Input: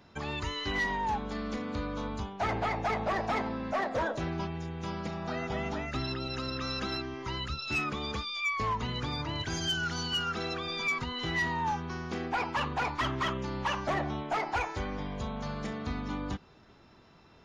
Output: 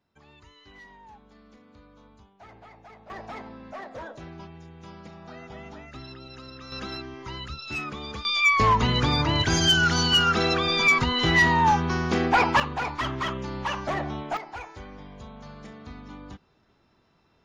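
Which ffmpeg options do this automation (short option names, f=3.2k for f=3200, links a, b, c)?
-af "asetnsamples=n=441:p=0,asendcmd='3.1 volume volume -8dB;6.72 volume volume -1dB;8.25 volume volume 11.5dB;12.6 volume volume 2dB;14.37 volume volume -7dB',volume=-18.5dB"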